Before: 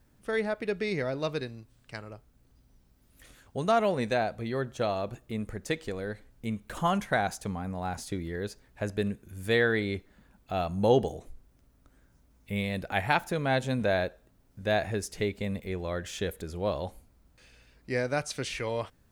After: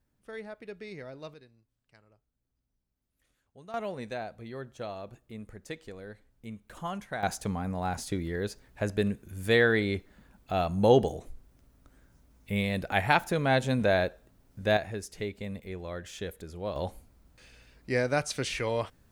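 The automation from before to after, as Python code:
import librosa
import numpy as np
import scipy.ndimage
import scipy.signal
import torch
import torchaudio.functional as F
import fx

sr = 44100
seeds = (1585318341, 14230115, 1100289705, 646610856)

y = fx.gain(x, sr, db=fx.steps((0.0, -12.0), (1.34, -20.0), (3.74, -9.0), (7.23, 2.0), (14.77, -5.0), (16.76, 2.0)))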